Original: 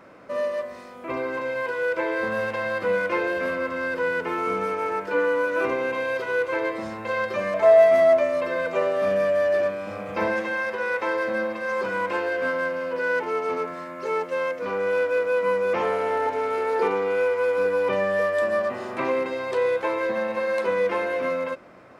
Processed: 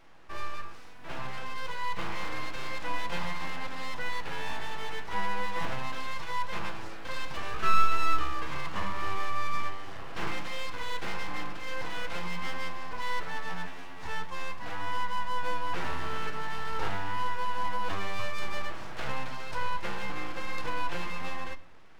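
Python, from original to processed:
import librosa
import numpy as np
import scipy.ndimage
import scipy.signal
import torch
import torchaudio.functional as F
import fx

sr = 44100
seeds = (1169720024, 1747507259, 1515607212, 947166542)

y = fx.peak_eq(x, sr, hz=4700.0, db=7.0, octaves=0.33)
y = np.abs(y)
y = fx.room_shoebox(y, sr, seeds[0], volume_m3=1900.0, walls='furnished', distance_m=0.66)
y = y * librosa.db_to_amplitude(-7.0)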